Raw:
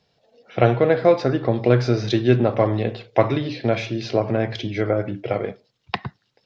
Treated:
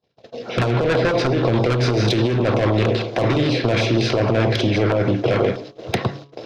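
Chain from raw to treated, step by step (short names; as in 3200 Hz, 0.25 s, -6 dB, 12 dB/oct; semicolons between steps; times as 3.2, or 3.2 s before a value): per-bin compression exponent 0.6; soft clip -15 dBFS, distortion -8 dB; LFO notch saw down 6.3 Hz 440–2400 Hz; band-limited delay 0.539 s, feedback 72%, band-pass 570 Hz, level -18.5 dB; gate -40 dBFS, range -44 dB; negative-ratio compressor -22 dBFS, ratio -1; de-hum 140.3 Hz, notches 9; gain +5 dB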